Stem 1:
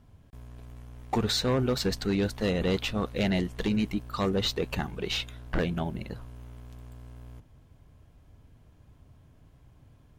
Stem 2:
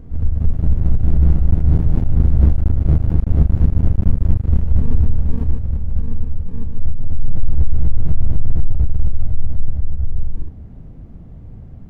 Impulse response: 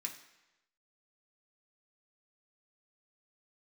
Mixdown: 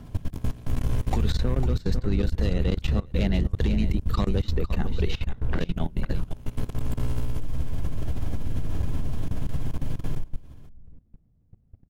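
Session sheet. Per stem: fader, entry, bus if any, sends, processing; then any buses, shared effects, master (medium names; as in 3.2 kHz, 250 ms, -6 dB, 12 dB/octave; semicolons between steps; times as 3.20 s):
-2.0 dB, 0.00 s, no send, echo send -9.5 dB, octave divider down 2 oct, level -2 dB; three bands compressed up and down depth 100%
-15.5 dB, 0.00 s, send -7.5 dB, echo send -9.5 dB, none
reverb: on, RT60 1.0 s, pre-delay 3 ms
echo: delay 502 ms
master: bass shelf 300 Hz +7.5 dB; level held to a coarse grid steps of 21 dB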